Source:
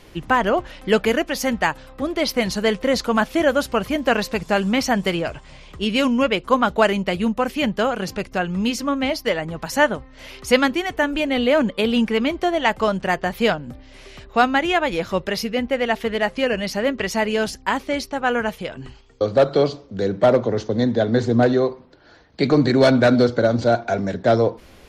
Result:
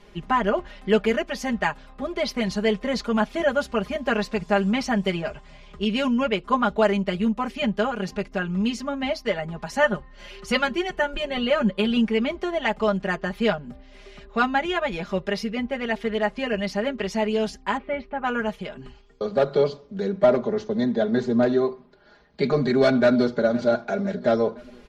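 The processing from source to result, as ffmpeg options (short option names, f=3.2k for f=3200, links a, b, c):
-filter_complex "[0:a]asettb=1/sr,asplit=3[a][b][c];[a]atrim=end=9.834[d];[b]atrim=start=9.83:end=11.97,asetpts=PTS-STARTPTS,afade=t=in:d=0.004:c=qsin,afade=t=out:st=2.136:d=0.004:c=qsin,aecho=1:1:5.6:0.65,atrim=end_sample=94374[e];[c]atrim=start=11.966[f];[d][e]acrossfade=d=0.004:c1=hsin:c2=qsin[g];[g][f]acrossfade=d=0.004:c1=qsin:c2=hsin,asettb=1/sr,asplit=3[h][i][j];[h]atrim=end=17.774[k];[i]atrim=start=17.77:end=18.24,asetpts=PTS-STARTPTS,afade=t=in:d=0.004:c=qsin,afade=t=out:st=0.466:d=0.004:c=qsin,lowpass=f=2.6k:w=0.5412,lowpass=f=2.6k:w=1.3066[l];[j]atrim=start=18.236[m];[k][l]acrossfade=d=0.004:c1=hsin:c2=qsin[n];[n][m]acrossfade=d=0.004:c1=qsin:c2=hsin,asplit=2[o][p];[p]afade=t=in:st=23.02:d=0.01,afade=t=out:st=23.67:d=0.01,aecho=0:1:510|1020|1530|2040|2550:0.125893|0.0692409|0.0380825|0.0209454|0.01152[q];[o][q]amix=inputs=2:normalize=0,lowpass=9.3k,highshelf=f=4.4k:g=-6,aecho=1:1:4.9:0.94,volume=-6.5dB"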